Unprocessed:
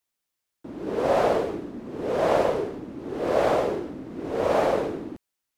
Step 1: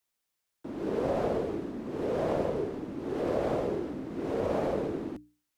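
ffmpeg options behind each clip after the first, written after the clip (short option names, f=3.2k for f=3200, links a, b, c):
-filter_complex "[0:a]acrossover=split=360[a][b];[b]acompressor=threshold=-34dB:ratio=4[c];[a][c]amix=inputs=2:normalize=0,bandreject=f=60:t=h:w=6,bandreject=f=120:t=h:w=6,bandreject=f=180:t=h:w=6,bandreject=f=240:t=h:w=6,bandreject=f=300:t=h:w=6"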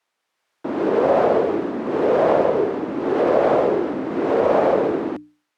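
-filter_complex "[0:a]asplit=2[a][b];[b]alimiter=level_in=4dB:limit=-24dB:level=0:latency=1:release=482,volume=-4dB,volume=1dB[c];[a][c]amix=inputs=2:normalize=0,dynaudnorm=f=160:g=5:m=4.5dB,bandpass=f=1k:t=q:w=0.54:csg=0,volume=7.5dB"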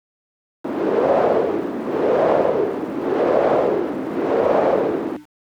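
-af "aeval=exprs='val(0)*gte(abs(val(0)),0.00596)':c=same"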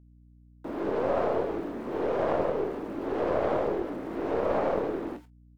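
-filter_complex "[0:a]asplit=2[a][b];[b]aecho=0:1:21|45:0.335|0.133[c];[a][c]amix=inputs=2:normalize=0,aeval=exprs='(tanh(2.51*val(0)+0.55)-tanh(0.55))/2.51':c=same,aeval=exprs='val(0)+0.00501*(sin(2*PI*60*n/s)+sin(2*PI*2*60*n/s)/2+sin(2*PI*3*60*n/s)/3+sin(2*PI*4*60*n/s)/4+sin(2*PI*5*60*n/s)/5)':c=same,volume=-8dB"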